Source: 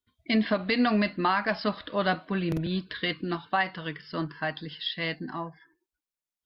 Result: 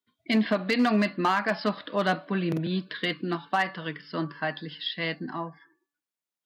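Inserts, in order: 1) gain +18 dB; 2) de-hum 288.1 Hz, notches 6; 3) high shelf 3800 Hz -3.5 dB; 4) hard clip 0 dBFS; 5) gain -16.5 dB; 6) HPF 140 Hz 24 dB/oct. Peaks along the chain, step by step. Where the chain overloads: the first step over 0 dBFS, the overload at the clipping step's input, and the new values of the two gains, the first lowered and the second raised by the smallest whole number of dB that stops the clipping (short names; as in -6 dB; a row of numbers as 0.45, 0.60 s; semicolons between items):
+4.5, +4.5, +4.0, 0.0, -16.5, -11.0 dBFS; step 1, 4.0 dB; step 1 +14 dB, step 5 -12.5 dB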